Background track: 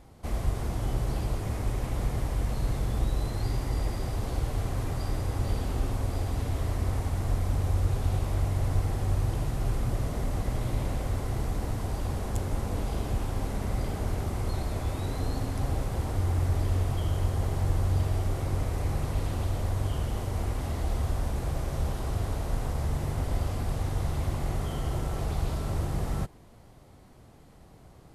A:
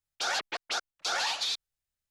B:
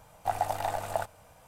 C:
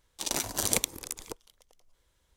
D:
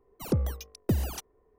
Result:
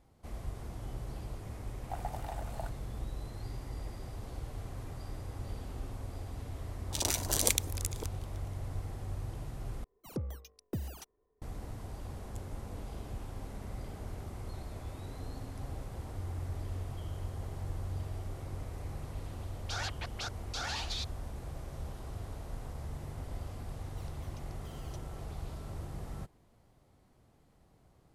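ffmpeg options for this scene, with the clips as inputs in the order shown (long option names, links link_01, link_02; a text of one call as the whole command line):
ffmpeg -i bed.wav -i cue0.wav -i cue1.wav -i cue2.wav -i cue3.wav -filter_complex "[4:a]asplit=2[link_01][link_02];[0:a]volume=-12dB[link_03];[3:a]acrossover=split=190|1300[link_04][link_05][link_06];[link_05]adelay=120[link_07];[link_06]adelay=150[link_08];[link_04][link_07][link_08]amix=inputs=3:normalize=0[link_09];[link_01]acontrast=74[link_10];[link_02]bandpass=frequency=4000:width_type=q:width=0.69:csg=0[link_11];[link_03]asplit=2[link_12][link_13];[link_12]atrim=end=9.844[link_14];[link_10]atrim=end=1.58,asetpts=PTS-STARTPTS,volume=-17.5dB[link_15];[link_13]atrim=start=11.416[link_16];[2:a]atrim=end=1.47,asetpts=PTS-STARTPTS,volume=-12.5dB,afade=type=in:duration=0.004:curve=hsin,afade=type=out:start_time=1.466:duration=0.004:curve=hsin,adelay=1640[link_17];[link_09]atrim=end=2.36,asetpts=PTS-STARTPTS,volume=-1dB,afade=type=in:duration=0.004:curve=hsin,afade=type=out:start_time=2.356:duration=0.004:curve=hsin,adelay=6590[link_18];[1:a]atrim=end=2.1,asetpts=PTS-STARTPTS,volume=-8dB,afade=type=in:duration=0.004:curve=hsin,afade=type=out:start_time=2.096:duration=0.004:curve=hsin,adelay=19490[link_19];[link_11]atrim=end=1.58,asetpts=PTS-STARTPTS,volume=-14.5dB,afade=type=in:duration=0.004:curve=hsin,afade=type=out:start_time=1.576:duration=0.004:curve=hsin,adelay=23760[link_20];[link_14][link_15]acrossfade=duration=0.004:curve1=hsin:curve2=hsin[link_21];[link_21][link_16]acrossfade=duration=0.004:curve1=hsin:curve2=hsin[link_22];[link_22][link_17][link_18][link_19][link_20]amix=inputs=5:normalize=0" out.wav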